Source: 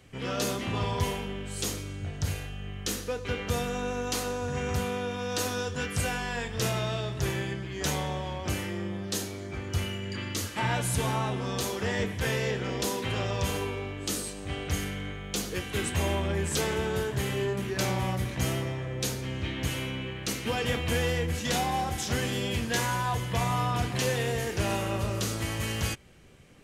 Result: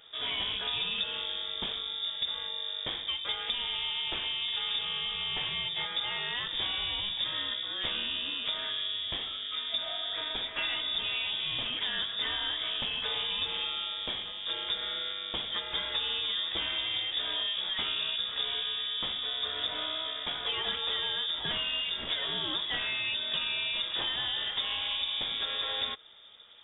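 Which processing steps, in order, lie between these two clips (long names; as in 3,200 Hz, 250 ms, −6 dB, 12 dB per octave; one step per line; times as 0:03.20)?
voice inversion scrambler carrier 3,600 Hz
downward compressor 6 to 1, threshold −29 dBFS, peak gain reduction 8.5 dB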